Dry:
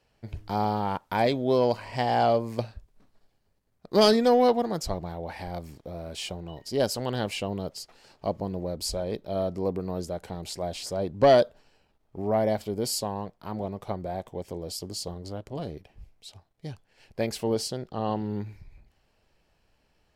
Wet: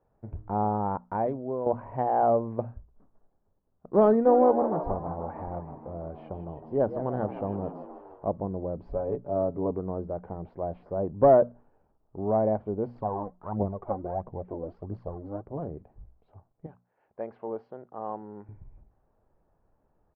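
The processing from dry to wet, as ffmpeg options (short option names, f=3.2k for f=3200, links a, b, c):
-filter_complex "[0:a]asplit=3[a][b][c];[a]afade=t=out:st=4.25:d=0.02[d];[b]asplit=8[e][f][g][h][i][j][k][l];[f]adelay=157,afreqshift=68,volume=-11dB[m];[g]adelay=314,afreqshift=136,volume=-15.2dB[n];[h]adelay=471,afreqshift=204,volume=-19.3dB[o];[i]adelay=628,afreqshift=272,volume=-23.5dB[p];[j]adelay=785,afreqshift=340,volume=-27.6dB[q];[k]adelay=942,afreqshift=408,volume=-31.8dB[r];[l]adelay=1099,afreqshift=476,volume=-35.9dB[s];[e][m][n][o][p][q][r][s]amix=inputs=8:normalize=0,afade=t=in:st=4.25:d=0.02,afade=t=out:st=8.29:d=0.02[t];[c]afade=t=in:st=8.29:d=0.02[u];[d][t][u]amix=inputs=3:normalize=0,asettb=1/sr,asplit=3[v][w][x];[v]atrim=end=8.814[y];[w]atrim=start=8.81:end=9.71,asetpts=PTS-STARTPTS,afade=t=in:d=0.004:c=qsin,afade=t=out:st=0.896:d=0.004:c=qsin,aecho=1:1:7.1:0.65,atrim=end_sample=39690[z];[x]atrim=start=9.706[aa];[y][z]acrossfade=d=0.004:c1=hsin:c2=qsin[ab];[ab][aa]acrossfade=d=0.004:c1=qsin:c2=hsin,asettb=1/sr,asplit=3[ac][ad][ae];[ac]atrim=end=12.954[af];[ad]atrim=start=12.95:end=15.42,asetpts=PTS-STARTPTS,afade=t=in:d=0.004:c=qsin,afade=t=out:st=2.466:d=0.004:c=qsin,aphaser=in_gain=1:out_gain=1:delay=4.1:decay=0.62:speed=1.5:type=triangular[ag];[ae]atrim=start=15.416[ah];[af][ag]acrossfade=d=0.004:c1=hsin:c2=qsin[ai];[ai][ah]acrossfade=d=0.004:c1=qsin:c2=hsin,asettb=1/sr,asplit=3[aj][ak][al];[aj]atrim=end=16.664[am];[ak]atrim=start=16.66:end=18.49,asetpts=PTS-STARTPTS,afade=t=in:d=0.004:c=qsin,afade=t=out:st=1.826:d=0.004:c=qsin,highpass=f=940:p=1[an];[al]atrim=start=18.486[ao];[am][an]acrossfade=d=0.004:c1=hsin:c2=qsin[ap];[ap][ao]acrossfade=d=0.004:c1=qsin:c2=hsin,asplit=2[aq][ar];[aq]atrim=end=1.66,asetpts=PTS-STARTPTS,afade=t=out:st=1.04:d=0.62:c=qua:silence=0.334965[as];[ar]atrim=start=1.66,asetpts=PTS-STARTPTS,afade=t=in:d=0.004:c=hsin:silence=0.334965[at];[as][at]concat=n=2:v=0:a=1,lowpass=f=1.2k:w=0.5412,lowpass=f=1.2k:w=1.3066,bandreject=f=60:t=h:w=6,bandreject=f=120:t=h:w=6,bandreject=f=180:t=h:w=6,bandreject=f=240:t=h:w=6"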